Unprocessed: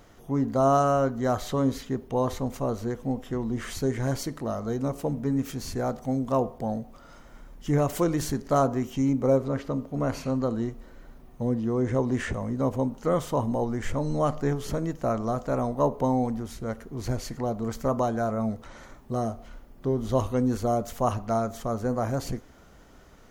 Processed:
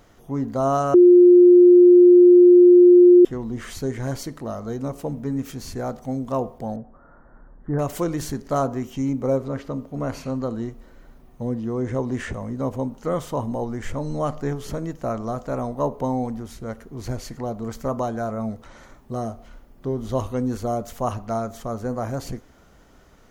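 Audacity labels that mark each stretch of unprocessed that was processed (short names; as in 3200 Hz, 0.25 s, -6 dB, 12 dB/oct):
0.940000	3.250000	bleep 355 Hz -7 dBFS
6.760000	7.790000	elliptic low-pass 1700 Hz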